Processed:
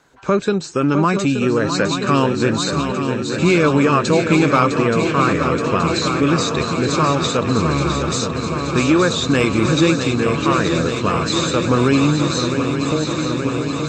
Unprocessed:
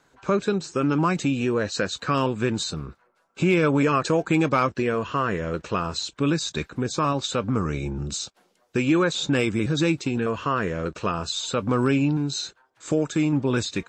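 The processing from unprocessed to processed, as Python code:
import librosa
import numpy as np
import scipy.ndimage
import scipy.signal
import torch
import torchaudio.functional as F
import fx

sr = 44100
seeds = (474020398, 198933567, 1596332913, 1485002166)

y = fx.fade_out_tail(x, sr, length_s=1.77)
y = fx.echo_swing(y, sr, ms=875, ratio=3, feedback_pct=77, wet_db=-8.0)
y = fx.cheby_harmonics(y, sr, harmonics=(6,), levels_db=(-43,), full_scale_db=-6.5)
y = F.gain(torch.from_numpy(y), 5.5).numpy()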